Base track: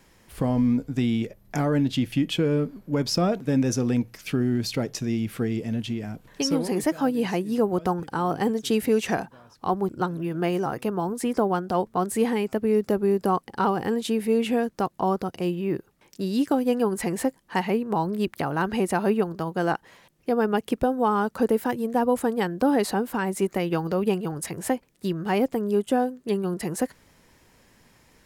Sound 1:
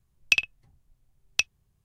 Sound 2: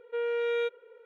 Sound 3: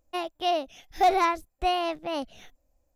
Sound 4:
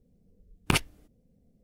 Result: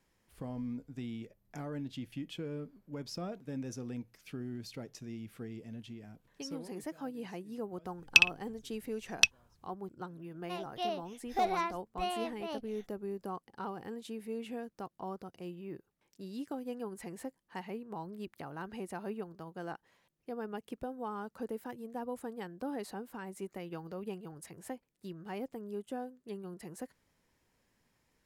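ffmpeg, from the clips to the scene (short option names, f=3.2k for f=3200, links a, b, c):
-filter_complex "[0:a]volume=-17.5dB[a];[1:a]atrim=end=1.84,asetpts=PTS-STARTPTS,afade=t=in:d=0.004:c=hsin,afade=t=out:st=1.836:d=0.004:c=hsin,adelay=7840[b];[3:a]atrim=end=2.95,asetpts=PTS-STARTPTS,volume=-10dB,afade=t=in:d=0.004:c=hsin,afade=t=out:st=2.946:d=0.004:c=hsin,adelay=10360[c];[a][b][c]amix=inputs=3:normalize=0"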